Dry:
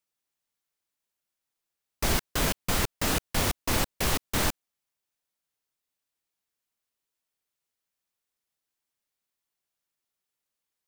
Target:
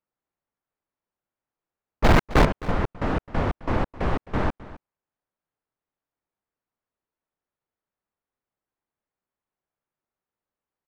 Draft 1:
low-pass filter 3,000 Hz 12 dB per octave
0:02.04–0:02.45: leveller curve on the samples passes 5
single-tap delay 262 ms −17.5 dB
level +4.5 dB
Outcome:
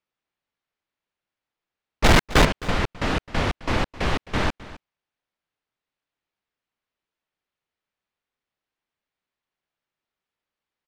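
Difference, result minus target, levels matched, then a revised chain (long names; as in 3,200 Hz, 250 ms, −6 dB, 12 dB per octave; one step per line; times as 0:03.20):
4,000 Hz band +7.5 dB
low-pass filter 1,300 Hz 12 dB per octave
0:02.04–0:02.45: leveller curve on the samples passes 5
single-tap delay 262 ms −17.5 dB
level +4.5 dB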